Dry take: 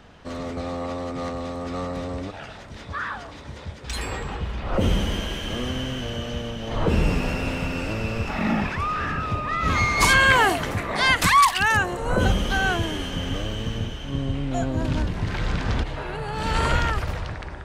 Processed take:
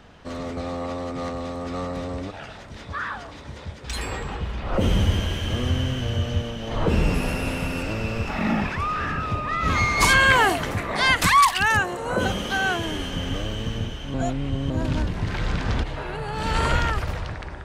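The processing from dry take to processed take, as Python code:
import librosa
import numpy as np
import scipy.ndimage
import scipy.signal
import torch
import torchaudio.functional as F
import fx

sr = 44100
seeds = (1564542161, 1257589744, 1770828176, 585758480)

y = fx.peak_eq(x, sr, hz=93.0, db=12.5, octaves=0.77, at=(4.95, 6.43))
y = fx.peak_eq(y, sr, hz=11000.0, db=14.5, octaves=0.38, at=(7.14, 7.83))
y = fx.highpass(y, sr, hz=190.0, slope=6, at=(11.8, 12.86))
y = fx.edit(y, sr, fx.reverse_span(start_s=14.14, length_s=0.56), tone=tone)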